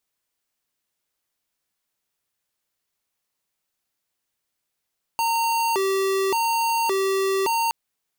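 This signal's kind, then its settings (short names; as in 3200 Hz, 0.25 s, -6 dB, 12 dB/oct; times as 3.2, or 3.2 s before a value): siren hi-lo 387–919 Hz 0.88/s square -22 dBFS 2.52 s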